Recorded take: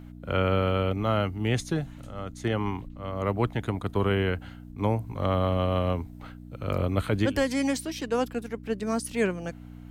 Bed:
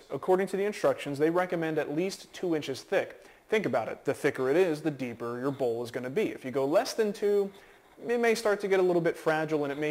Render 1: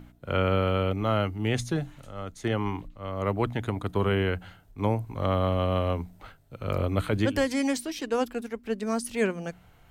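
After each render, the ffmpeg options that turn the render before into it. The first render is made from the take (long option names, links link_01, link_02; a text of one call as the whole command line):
ffmpeg -i in.wav -af "bandreject=frequency=60:width_type=h:width=4,bandreject=frequency=120:width_type=h:width=4,bandreject=frequency=180:width_type=h:width=4,bandreject=frequency=240:width_type=h:width=4,bandreject=frequency=300:width_type=h:width=4" out.wav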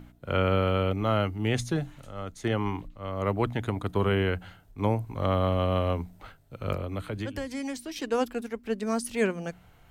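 ffmpeg -i in.wav -filter_complex "[0:a]asettb=1/sr,asplit=3[link_01][link_02][link_03];[link_01]atrim=end=6.744[link_04];[link_02]atrim=start=6.74:end=7.96,asetpts=PTS-STARTPTS,afade=type=in:duration=0.004:curve=qsin,afade=type=out:start_time=1.216:duration=0.004:curve=qsin,acrossover=split=170|600[link_05][link_06][link_07];[link_05]acompressor=threshold=-36dB:ratio=4[link_08];[link_06]acompressor=threshold=-37dB:ratio=4[link_09];[link_07]acompressor=threshold=-40dB:ratio=4[link_10];[link_08][link_09][link_10]amix=inputs=3:normalize=0[link_11];[link_03]atrim=start=7.956[link_12];[link_04][link_11]acrossfade=duration=0.004:curve1=hsin:curve2=qsin[link_13];[link_13][link_12]acrossfade=duration=0.004:curve1=qsin:curve2=hsin" out.wav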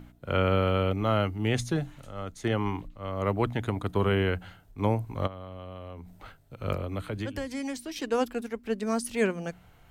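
ffmpeg -i in.wav -filter_complex "[0:a]asplit=3[link_01][link_02][link_03];[link_01]afade=type=out:start_time=5.26:duration=0.02[link_04];[link_02]acompressor=threshold=-38dB:ratio=10:attack=3.2:release=140:knee=1:detection=peak,afade=type=in:start_time=5.26:duration=0.02,afade=type=out:start_time=6.61:duration=0.02[link_05];[link_03]afade=type=in:start_time=6.61:duration=0.02[link_06];[link_04][link_05][link_06]amix=inputs=3:normalize=0" out.wav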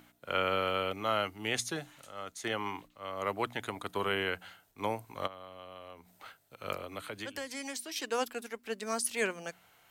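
ffmpeg -i in.wav -af "highpass=frequency=910:poles=1,highshelf=frequency=4800:gain=5" out.wav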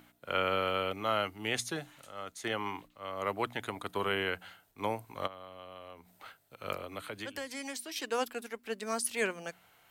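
ffmpeg -i in.wav -af "equalizer=frequency=6300:width_type=o:width=0.77:gain=-2.5" out.wav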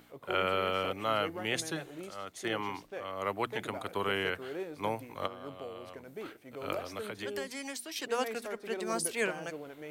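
ffmpeg -i in.wav -i bed.wav -filter_complex "[1:a]volume=-14.5dB[link_01];[0:a][link_01]amix=inputs=2:normalize=0" out.wav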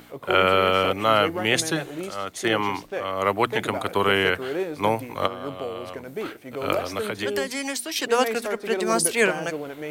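ffmpeg -i in.wav -af "volume=11.5dB" out.wav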